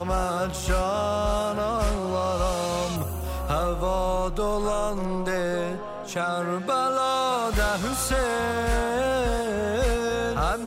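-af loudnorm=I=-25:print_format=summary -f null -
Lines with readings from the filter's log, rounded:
Input Integrated:    -25.7 LUFS
Input True Peak:     -12.2 dBTP
Input LRA:             2.0 LU
Input Threshold:     -35.7 LUFS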